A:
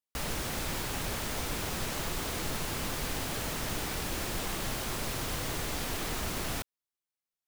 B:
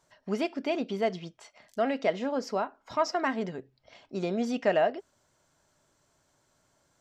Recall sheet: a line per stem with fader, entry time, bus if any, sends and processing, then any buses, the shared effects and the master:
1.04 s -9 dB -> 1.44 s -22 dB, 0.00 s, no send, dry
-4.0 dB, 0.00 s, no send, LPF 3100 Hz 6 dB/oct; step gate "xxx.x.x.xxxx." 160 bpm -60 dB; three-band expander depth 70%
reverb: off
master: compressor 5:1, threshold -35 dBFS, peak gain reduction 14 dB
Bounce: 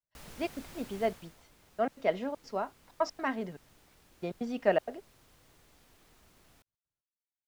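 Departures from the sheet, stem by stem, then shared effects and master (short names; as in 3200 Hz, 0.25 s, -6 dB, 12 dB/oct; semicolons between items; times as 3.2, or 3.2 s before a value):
stem A -9.0 dB -> -15.5 dB; master: missing compressor 5:1, threshold -35 dBFS, peak gain reduction 14 dB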